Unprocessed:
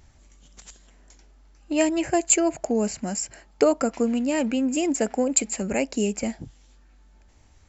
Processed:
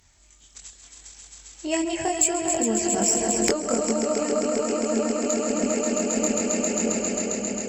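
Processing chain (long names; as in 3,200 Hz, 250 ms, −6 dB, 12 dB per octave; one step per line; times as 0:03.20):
source passing by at 0:03.46, 13 m/s, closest 3.5 metres
on a send: echo that builds up and dies away 134 ms, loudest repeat 5, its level −6 dB
on the sum: downward compressor 16 to 1, threshold −32 dBFS, peak gain reduction 19 dB
multi-voice chorus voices 2, 0.8 Hz, delay 23 ms, depth 1.7 ms
harmonic generator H 2 −15 dB, 3 −23 dB, 4 −30 dB, 5 −45 dB, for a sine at −25 dBFS
in parallel at +2.5 dB: speech leveller within 3 dB
on the sum: high-shelf EQ 4,300 Hz +7.5 dB
one half of a high-frequency compander encoder only
level +9 dB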